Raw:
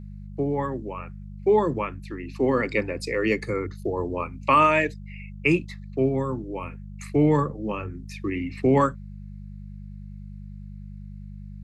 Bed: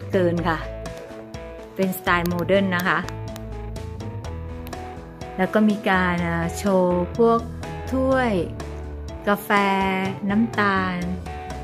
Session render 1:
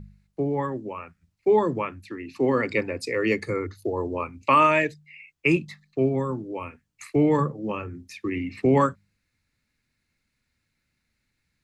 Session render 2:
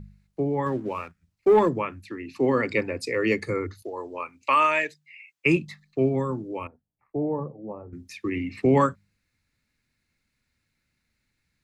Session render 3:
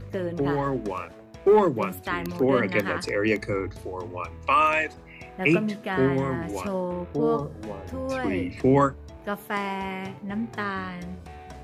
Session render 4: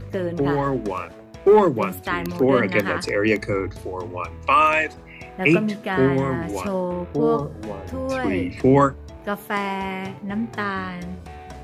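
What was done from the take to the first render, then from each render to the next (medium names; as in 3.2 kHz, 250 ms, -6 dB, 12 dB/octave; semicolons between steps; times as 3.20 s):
de-hum 50 Hz, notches 4
0.66–1.69 s: waveshaping leveller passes 1; 3.82–5.46 s: high-pass 910 Hz 6 dB/octave; 6.67–7.93 s: four-pole ladder low-pass 890 Hz, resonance 45%
add bed -10 dB
trim +4 dB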